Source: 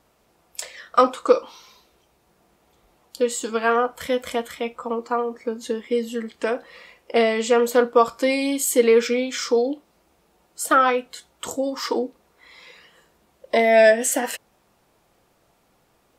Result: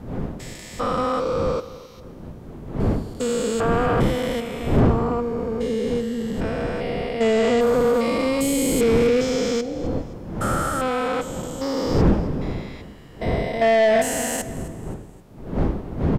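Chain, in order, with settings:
spectrum averaged block by block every 400 ms
wind on the microphone 370 Hz −33 dBFS
in parallel at −3 dB: brickwall limiter −15.5 dBFS, peak gain reduction 7 dB
on the sum: repeating echo 262 ms, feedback 39%, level −18 dB
on a send at −17 dB: convolution reverb RT60 0.60 s, pre-delay 3 ms
on the sum: soft clipping −13.5 dBFS, distortion −15 dB
low-shelf EQ 240 Hz +6 dB

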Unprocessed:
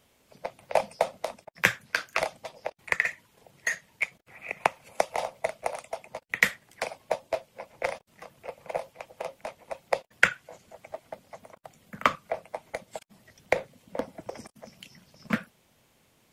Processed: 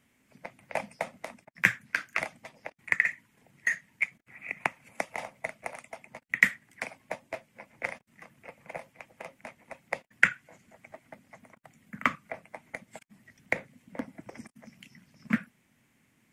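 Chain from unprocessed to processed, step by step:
graphic EQ with 10 bands 125 Hz +5 dB, 250 Hz +11 dB, 500 Hz −5 dB, 2,000 Hz +11 dB, 4,000 Hz −5 dB, 8,000 Hz +4 dB
level −8.5 dB

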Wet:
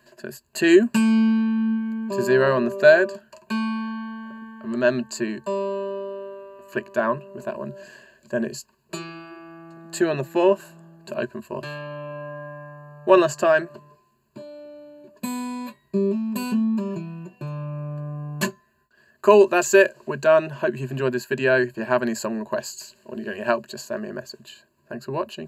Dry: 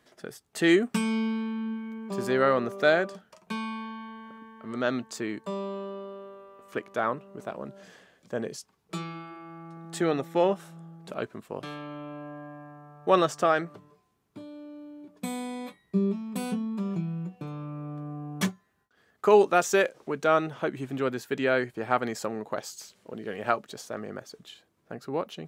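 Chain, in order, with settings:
EQ curve with evenly spaced ripples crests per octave 1.4, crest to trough 16 dB
level +2.5 dB

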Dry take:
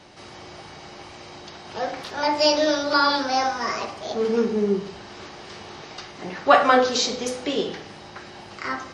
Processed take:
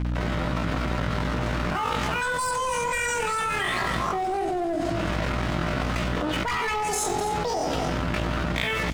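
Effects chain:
pitch shifter +9 semitones
low-pass that shuts in the quiet parts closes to 2,000 Hz, open at −17 dBFS
soft clipping −16 dBFS, distortion −11 dB
bass and treble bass +14 dB, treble −2 dB
on a send: single-tap delay 254 ms −16 dB
on the sum: dead-zone distortion −43.5 dBFS
mains hum 60 Hz, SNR 19 dB
envelope flattener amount 100%
level −8 dB

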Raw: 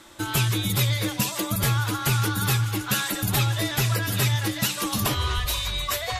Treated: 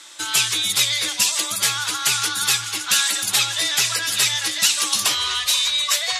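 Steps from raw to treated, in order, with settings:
meter weighting curve ITU-R 468

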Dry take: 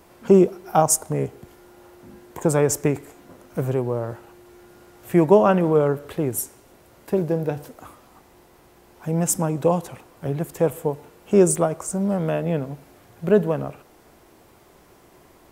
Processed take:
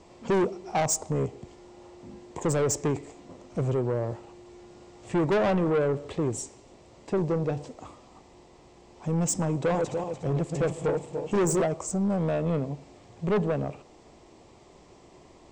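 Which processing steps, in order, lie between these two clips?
0:09.60–0:11.62: feedback delay that plays each chunk backwards 146 ms, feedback 59%, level −6 dB
Chebyshev low-pass filter 7,900 Hz, order 5
parametric band 1,500 Hz −12 dB 0.39 octaves
soft clipping −20.5 dBFS, distortion −6 dB

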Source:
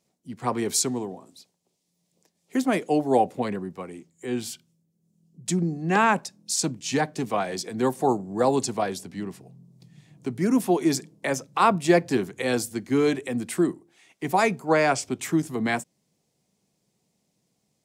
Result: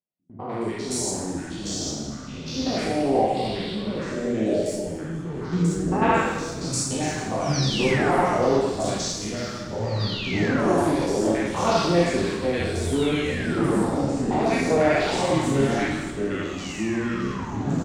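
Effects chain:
spectrum averaged block by block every 100 ms
low-pass filter 10,000 Hz 24 dB per octave
low-shelf EQ 330 Hz −4 dB
noise gate −50 dBFS, range −20 dB
in parallel at −7.5 dB: dead-zone distortion −43 dBFS
on the sum: sound drawn into the spectrogram fall, 0:07.31–0:08.59, 360–6,200 Hz −29 dBFS
three-band delay without the direct sound lows, mids, highs 100/220 ms, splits 1,100/4,300 Hz
dense smooth reverb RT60 0.97 s, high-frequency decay 0.9×, DRR −2.5 dB
delay with pitch and tempo change per echo 512 ms, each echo −4 semitones, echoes 3
on a send: echo with shifted repeats 227 ms, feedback 59%, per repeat −120 Hz, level −18 dB
on the sum: level −3 dB

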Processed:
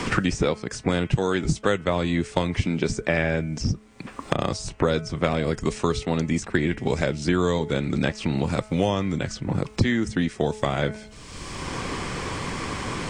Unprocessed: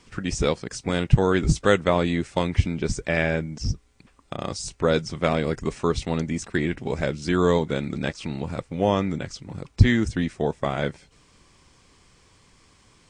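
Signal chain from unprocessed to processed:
hum removal 214.4 Hz, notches 15
multiband upward and downward compressor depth 100%

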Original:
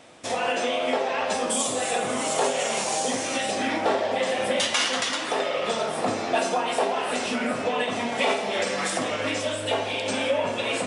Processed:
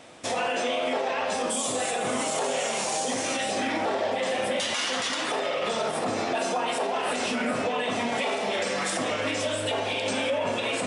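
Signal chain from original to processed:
brickwall limiter −20 dBFS, peak gain reduction 9.5 dB
level +1.5 dB

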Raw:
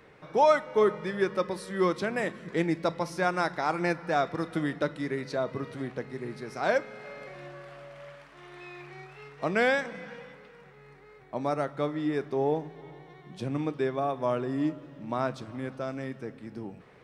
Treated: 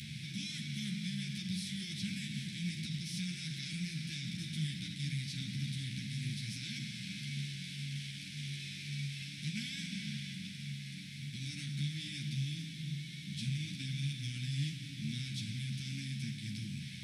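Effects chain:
compressor on every frequency bin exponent 0.4
inverse Chebyshev band-stop filter 420–1,200 Hz, stop band 60 dB
low-shelf EQ 61 Hz −11.5 dB
brickwall limiter −29 dBFS, peak gain reduction 7.5 dB
parametric band 120 Hz +3.5 dB 1.7 octaves
string-ensemble chorus
level +1 dB

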